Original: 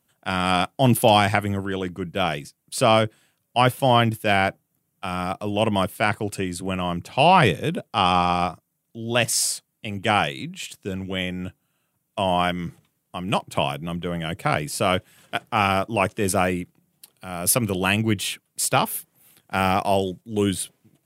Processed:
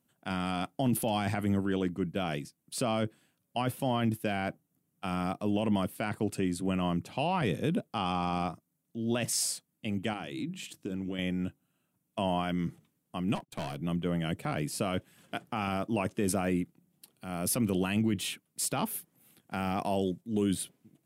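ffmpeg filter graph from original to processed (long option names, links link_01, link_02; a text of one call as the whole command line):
ffmpeg -i in.wav -filter_complex "[0:a]asettb=1/sr,asplit=3[link_01][link_02][link_03];[link_01]atrim=end=10.134[link_04];[link_02]atrim=start=10.13:end=11.19,asetpts=PTS-STARTPTS,afade=type=in:duration=0.004:curve=qsin,afade=type=out:start_time=1.056:duration=0.004:curve=qsin,equalizer=frequency=320:width_type=o:width=0.3:gain=7.5,bandreject=frequency=50:width_type=h:width=6,bandreject=frequency=100:width_type=h:width=6,bandreject=frequency=150:width_type=h:width=6,bandreject=frequency=200:width_type=h:width=6,acompressor=threshold=-29dB:ratio=4:attack=3.2:release=140:knee=1:detection=peak[link_05];[link_03]atrim=start=11.186[link_06];[link_04][link_05]acrossfade=duration=0.004:curve1=hsin:curve2=qsin[link_07];[link_07][link_06]acrossfade=duration=0.004:curve1=qsin:curve2=hsin,asettb=1/sr,asplit=3[link_08][link_09][link_10];[link_08]atrim=end=13.354[link_11];[link_09]atrim=start=13.35:end=13.81,asetpts=PTS-STARTPTS,afade=type=in:duration=0.004:curve=qsin,afade=type=out:start_time=0.456:duration=0.004:curve=qsin,highpass=frequency=100:width=0.5412,highpass=frequency=100:width=1.3066,agate=range=-31dB:threshold=-39dB:ratio=16:release=100:detection=peak,aeval=exprs='(tanh(20*val(0)+0.45)-tanh(0.45))/20':channel_layout=same[link_12];[link_10]atrim=start=13.806[link_13];[link_11][link_12]acrossfade=duration=0.004:curve1=hsin:curve2=qsin[link_14];[link_14][link_13]acrossfade=duration=0.004:curve1=qsin:curve2=hsin,equalizer=frequency=240:width_type=o:width=1.4:gain=8.5,alimiter=limit=-11.5dB:level=0:latency=1:release=28,volume=-8dB" out.wav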